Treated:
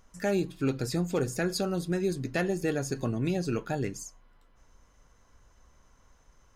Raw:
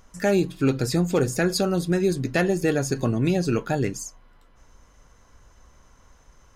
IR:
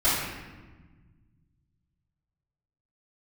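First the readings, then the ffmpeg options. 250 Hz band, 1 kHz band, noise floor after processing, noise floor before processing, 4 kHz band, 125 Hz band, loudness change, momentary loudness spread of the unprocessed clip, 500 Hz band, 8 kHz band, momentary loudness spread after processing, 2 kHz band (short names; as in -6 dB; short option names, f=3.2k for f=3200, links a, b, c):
-7.0 dB, -7.0 dB, -62 dBFS, -56 dBFS, -7.0 dB, -7.0 dB, -7.0 dB, 4 LU, -7.0 dB, -7.0 dB, 4 LU, -7.0 dB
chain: -filter_complex "[0:a]asplit=2[a][b];[1:a]atrim=start_sample=2205,atrim=end_sample=6174[c];[b][c]afir=irnorm=-1:irlink=0,volume=-39dB[d];[a][d]amix=inputs=2:normalize=0,volume=-7dB"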